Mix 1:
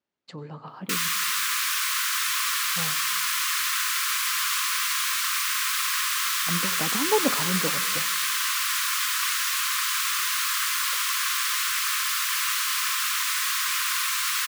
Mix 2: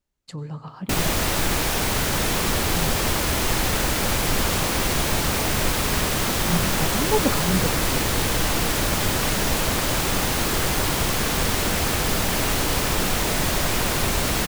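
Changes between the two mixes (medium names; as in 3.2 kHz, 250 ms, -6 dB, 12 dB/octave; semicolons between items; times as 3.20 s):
speech: remove band-pass 230–4200 Hz; background: remove brick-wall FIR high-pass 1 kHz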